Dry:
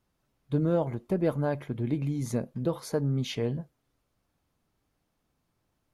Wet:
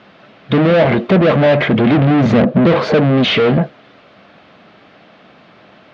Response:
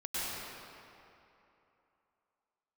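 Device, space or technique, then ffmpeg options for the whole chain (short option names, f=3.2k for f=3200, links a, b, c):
overdrive pedal into a guitar cabinet: -filter_complex "[0:a]asettb=1/sr,asplit=3[a][b][c];[a]atrim=end=1.914[d];[b]atrim=start=1.91:end=3,asetpts=PTS-STARTPTS,afade=t=in:d=0.004:c=qsin,afade=t=out:st=1.086:d=0.004:c=qsin,tiltshelf=f=970:g=8[e];[c]atrim=start=2.996[f];[d][e]acrossfade=d=0.004:c1=hsin:c2=qsin[g];[g][f]acrossfade=d=0.004:c1=qsin:c2=hsin,asplit=2[h][i];[i]highpass=f=720:p=1,volume=40dB,asoftclip=type=tanh:threshold=-10.5dB[j];[h][j]amix=inputs=2:normalize=0,lowpass=f=6.4k:p=1,volume=-6dB,highpass=82,equalizer=f=200:t=q:w=4:g=8,equalizer=f=630:t=q:w=4:g=5,equalizer=f=940:t=q:w=4:g=-6,lowpass=f=3.6k:w=0.5412,lowpass=f=3.6k:w=1.3066,volume=5dB"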